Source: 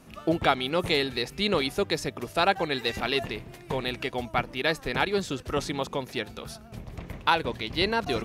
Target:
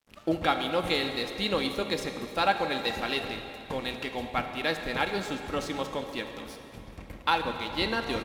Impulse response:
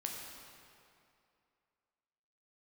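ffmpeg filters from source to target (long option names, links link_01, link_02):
-filter_complex "[0:a]aecho=1:1:3.7:0.37,aeval=exprs='sgn(val(0))*max(abs(val(0))-0.00501,0)':channel_layout=same,asplit=2[link_01][link_02];[1:a]atrim=start_sample=2205,asetrate=34398,aresample=44100[link_03];[link_02][link_03]afir=irnorm=-1:irlink=0,volume=0.5dB[link_04];[link_01][link_04]amix=inputs=2:normalize=0,volume=-8.5dB"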